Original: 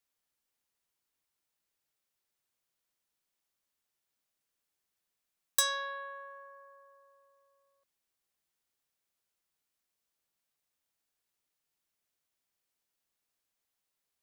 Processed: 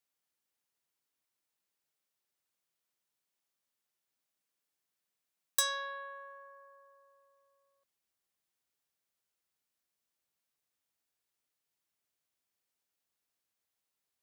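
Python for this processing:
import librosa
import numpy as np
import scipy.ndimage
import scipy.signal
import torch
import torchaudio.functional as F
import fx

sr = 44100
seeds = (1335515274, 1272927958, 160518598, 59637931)

y = fx.highpass(x, sr, hz=fx.steps((0.0, 94.0), (5.62, 45.0)), slope=12)
y = F.gain(torch.from_numpy(y), -2.0).numpy()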